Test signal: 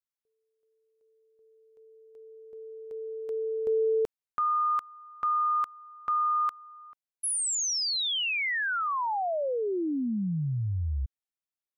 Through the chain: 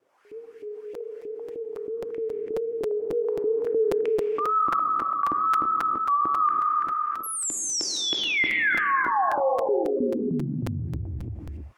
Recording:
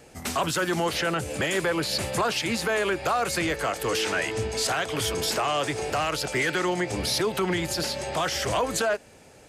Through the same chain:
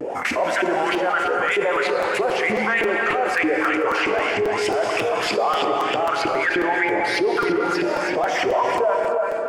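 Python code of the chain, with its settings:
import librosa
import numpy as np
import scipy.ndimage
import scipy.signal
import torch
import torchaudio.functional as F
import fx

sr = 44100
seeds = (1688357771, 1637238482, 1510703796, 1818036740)

y = fx.dereverb_blind(x, sr, rt60_s=0.51)
y = fx.peak_eq(y, sr, hz=3900.0, db=-6.5, octaves=0.36)
y = fx.filter_lfo_bandpass(y, sr, shape='saw_up', hz=3.2, low_hz=310.0, high_hz=2600.0, q=3.4)
y = fx.low_shelf(y, sr, hz=98.0, db=-6.0)
y = fx.wow_flutter(y, sr, seeds[0], rate_hz=2.1, depth_cents=110.0)
y = y + 10.0 ** (-9.0 / 20.0) * np.pad(y, (int(335 * sr / 1000.0), 0))[:len(y)]
y = fx.rev_gated(y, sr, seeds[1], gate_ms=350, shape='flat', drr_db=3.5)
y = fx.buffer_crackle(y, sr, first_s=0.94, period_s=0.27, block=256, kind='repeat')
y = fx.env_flatten(y, sr, amount_pct=70)
y = F.gain(torch.from_numpy(y), 6.5).numpy()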